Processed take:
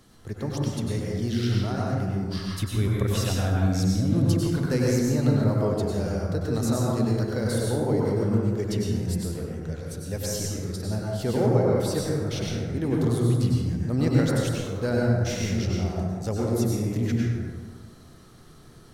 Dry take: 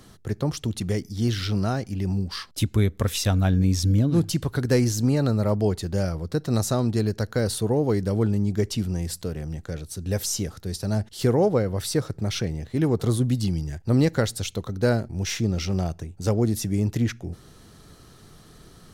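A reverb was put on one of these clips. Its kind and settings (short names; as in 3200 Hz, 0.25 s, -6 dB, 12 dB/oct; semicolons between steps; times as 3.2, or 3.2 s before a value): plate-style reverb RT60 1.7 s, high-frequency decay 0.4×, pre-delay 85 ms, DRR -4 dB; gain -6.5 dB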